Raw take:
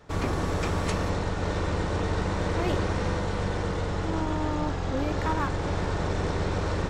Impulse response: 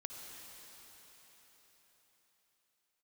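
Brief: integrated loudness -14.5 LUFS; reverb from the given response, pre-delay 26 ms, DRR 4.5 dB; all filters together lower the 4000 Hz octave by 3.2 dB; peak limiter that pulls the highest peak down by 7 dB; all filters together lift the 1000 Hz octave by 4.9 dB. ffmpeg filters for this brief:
-filter_complex "[0:a]equalizer=f=1k:t=o:g=6,equalizer=f=4k:t=o:g=-4.5,alimiter=limit=-19dB:level=0:latency=1,asplit=2[a][b];[1:a]atrim=start_sample=2205,adelay=26[c];[b][c]afir=irnorm=-1:irlink=0,volume=-2.5dB[d];[a][d]amix=inputs=2:normalize=0,volume=13.5dB"

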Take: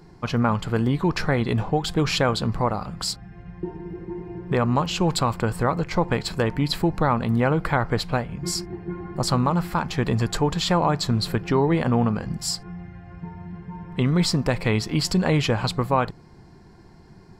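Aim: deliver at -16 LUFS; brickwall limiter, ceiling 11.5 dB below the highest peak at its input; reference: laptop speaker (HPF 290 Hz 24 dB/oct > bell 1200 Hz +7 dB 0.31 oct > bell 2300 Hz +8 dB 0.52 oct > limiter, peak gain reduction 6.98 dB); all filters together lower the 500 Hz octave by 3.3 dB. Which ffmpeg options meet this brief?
-af "equalizer=f=500:t=o:g=-4,alimiter=limit=-21dB:level=0:latency=1,highpass=f=290:w=0.5412,highpass=f=290:w=1.3066,equalizer=f=1.2k:t=o:w=0.31:g=7,equalizer=f=2.3k:t=o:w=0.52:g=8,volume=18dB,alimiter=limit=-4dB:level=0:latency=1"

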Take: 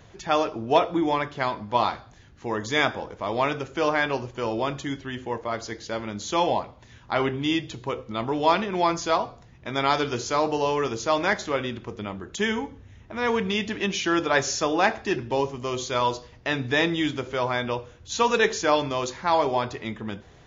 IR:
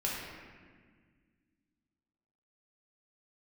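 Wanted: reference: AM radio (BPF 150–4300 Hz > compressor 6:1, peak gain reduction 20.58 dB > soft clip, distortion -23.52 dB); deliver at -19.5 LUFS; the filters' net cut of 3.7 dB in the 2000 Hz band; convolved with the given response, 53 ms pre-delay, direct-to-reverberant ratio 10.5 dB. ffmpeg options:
-filter_complex "[0:a]equalizer=f=2k:t=o:g=-4.5,asplit=2[a][b];[1:a]atrim=start_sample=2205,adelay=53[c];[b][c]afir=irnorm=-1:irlink=0,volume=-16dB[d];[a][d]amix=inputs=2:normalize=0,highpass=150,lowpass=4.3k,acompressor=threshold=-36dB:ratio=6,asoftclip=threshold=-26dB,volume=20.5dB"

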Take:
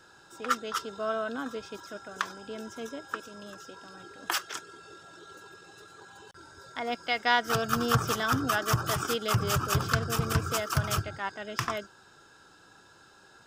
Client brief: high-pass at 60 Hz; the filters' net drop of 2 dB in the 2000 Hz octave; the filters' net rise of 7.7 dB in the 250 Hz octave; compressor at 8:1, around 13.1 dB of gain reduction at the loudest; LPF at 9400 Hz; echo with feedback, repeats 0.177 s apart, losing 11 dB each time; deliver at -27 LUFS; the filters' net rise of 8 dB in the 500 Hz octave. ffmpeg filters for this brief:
-af "highpass=60,lowpass=9.4k,equalizer=f=250:t=o:g=7.5,equalizer=f=500:t=o:g=8,equalizer=f=2k:t=o:g=-3.5,acompressor=threshold=-32dB:ratio=8,aecho=1:1:177|354|531:0.282|0.0789|0.0221,volume=10.5dB"

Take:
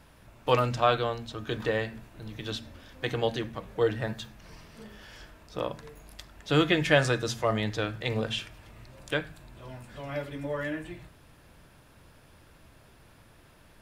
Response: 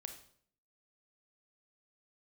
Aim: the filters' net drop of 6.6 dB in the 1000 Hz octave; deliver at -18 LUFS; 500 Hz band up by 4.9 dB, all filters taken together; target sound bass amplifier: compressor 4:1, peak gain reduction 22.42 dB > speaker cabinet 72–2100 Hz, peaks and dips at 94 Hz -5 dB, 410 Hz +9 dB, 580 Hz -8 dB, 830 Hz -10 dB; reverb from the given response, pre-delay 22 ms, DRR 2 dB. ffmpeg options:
-filter_complex "[0:a]equalizer=f=500:t=o:g=6,equalizer=f=1k:t=o:g=-6.5,asplit=2[a][b];[1:a]atrim=start_sample=2205,adelay=22[c];[b][c]afir=irnorm=-1:irlink=0,volume=2dB[d];[a][d]amix=inputs=2:normalize=0,acompressor=threshold=-40dB:ratio=4,highpass=f=72:w=0.5412,highpass=f=72:w=1.3066,equalizer=f=94:t=q:w=4:g=-5,equalizer=f=410:t=q:w=4:g=9,equalizer=f=580:t=q:w=4:g=-8,equalizer=f=830:t=q:w=4:g=-10,lowpass=f=2.1k:w=0.5412,lowpass=f=2.1k:w=1.3066,volume=24.5dB"

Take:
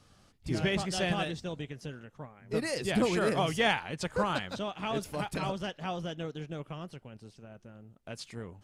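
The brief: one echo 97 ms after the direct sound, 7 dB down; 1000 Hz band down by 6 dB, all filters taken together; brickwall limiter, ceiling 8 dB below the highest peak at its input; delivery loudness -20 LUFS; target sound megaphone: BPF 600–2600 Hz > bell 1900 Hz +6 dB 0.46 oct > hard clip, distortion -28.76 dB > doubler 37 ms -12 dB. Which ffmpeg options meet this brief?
-filter_complex "[0:a]equalizer=f=1k:t=o:g=-7.5,alimiter=level_in=0.5dB:limit=-24dB:level=0:latency=1,volume=-0.5dB,highpass=600,lowpass=2.6k,equalizer=f=1.9k:t=o:w=0.46:g=6,aecho=1:1:97:0.447,asoftclip=type=hard:threshold=-26dB,asplit=2[a][b];[b]adelay=37,volume=-12dB[c];[a][c]amix=inputs=2:normalize=0,volume=19.5dB"

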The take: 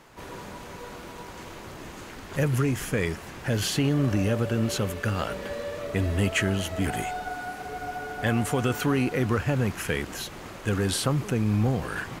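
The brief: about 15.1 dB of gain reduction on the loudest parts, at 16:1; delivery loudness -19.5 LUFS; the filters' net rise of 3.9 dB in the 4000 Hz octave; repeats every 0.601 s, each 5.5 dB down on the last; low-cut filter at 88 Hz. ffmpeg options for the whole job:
-af "highpass=88,equalizer=f=4k:t=o:g=5,acompressor=threshold=-35dB:ratio=16,aecho=1:1:601|1202|1803|2404|3005|3606|4207:0.531|0.281|0.149|0.079|0.0419|0.0222|0.0118,volume=18.5dB"

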